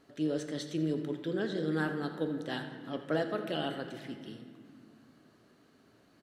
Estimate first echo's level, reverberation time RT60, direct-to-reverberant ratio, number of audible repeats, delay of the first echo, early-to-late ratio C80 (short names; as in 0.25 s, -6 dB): -14.0 dB, 2.0 s, 5.5 dB, 1, 83 ms, 8.0 dB